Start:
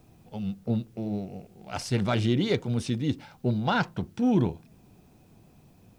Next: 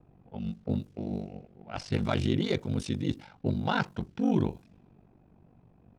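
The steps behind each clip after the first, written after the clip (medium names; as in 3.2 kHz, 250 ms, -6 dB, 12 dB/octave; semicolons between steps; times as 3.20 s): ring modulator 24 Hz; level-controlled noise filter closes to 1.4 kHz, open at -27.5 dBFS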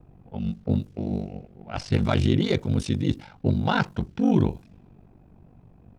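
bass shelf 90 Hz +8 dB; trim +4.5 dB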